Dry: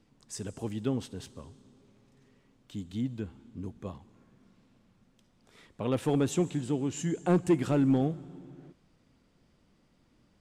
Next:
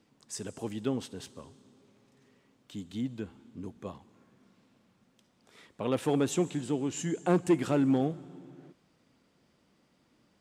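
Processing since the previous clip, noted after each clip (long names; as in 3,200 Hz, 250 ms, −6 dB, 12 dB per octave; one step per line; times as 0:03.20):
high-pass filter 220 Hz 6 dB per octave
level +1.5 dB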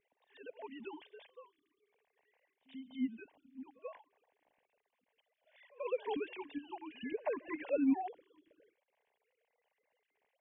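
three sine waves on the formant tracks
phaser with its sweep stopped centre 1,300 Hz, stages 6
echo ahead of the sound 87 ms −22 dB
level +2 dB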